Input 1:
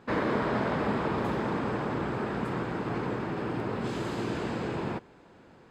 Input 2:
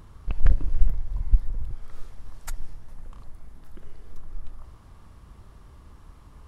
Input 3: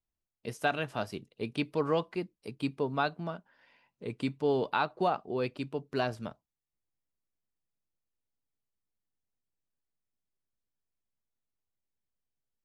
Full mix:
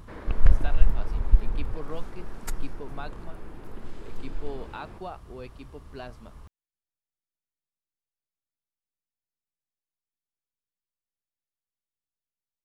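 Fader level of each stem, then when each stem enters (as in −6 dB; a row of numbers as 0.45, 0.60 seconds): −15.0, +1.0, −10.0 decibels; 0.00, 0.00, 0.00 seconds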